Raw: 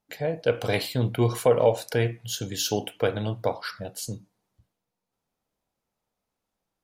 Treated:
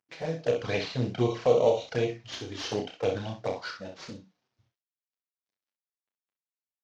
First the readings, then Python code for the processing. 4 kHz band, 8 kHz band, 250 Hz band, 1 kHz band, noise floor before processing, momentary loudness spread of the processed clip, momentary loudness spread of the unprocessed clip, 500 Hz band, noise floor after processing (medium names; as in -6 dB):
-5.0 dB, -12.5 dB, -3.0 dB, -3.5 dB, -84 dBFS, 17 LU, 13 LU, -2.0 dB, under -85 dBFS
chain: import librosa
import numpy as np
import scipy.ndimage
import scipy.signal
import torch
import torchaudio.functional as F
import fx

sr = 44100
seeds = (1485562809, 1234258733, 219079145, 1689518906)

y = fx.cvsd(x, sr, bps=32000)
y = fx.highpass(y, sr, hz=120.0, slope=6)
y = fx.env_flanger(y, sr, rest_ms=9.2, full_db=-21.0)
y = fx.room_early_taps(y, sr, ms=(31, 63), db=(-6.0, -8.0))
y = y * 10.0 ** (-1.5 / 20.0)